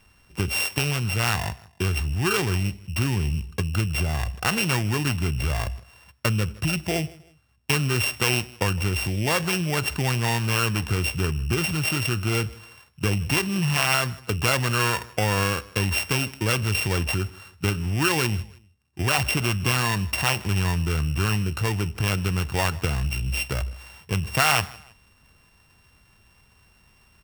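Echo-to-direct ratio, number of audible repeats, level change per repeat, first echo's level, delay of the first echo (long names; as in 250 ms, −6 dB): −21.5 dB, 2, −9.5 dB, −22.0 dB, 158 ms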